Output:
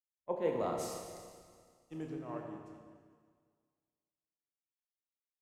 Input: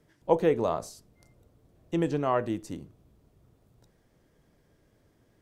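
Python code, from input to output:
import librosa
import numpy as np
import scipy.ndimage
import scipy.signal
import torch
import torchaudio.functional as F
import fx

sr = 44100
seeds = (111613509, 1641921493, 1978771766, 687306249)

y = fx.doppler_pass(x, sr, speed_mps=20, closest_m=2.7, pass_at_s=1.12)
y = fx.rev_schroeder(y, sr, rt60_s=3.7, comb_ms=28, drr_db=-1.0)
y = fx.band_widen(y, sr, depth_pct=100)
y = y * 10.0 ** (-2.5 / 20.0)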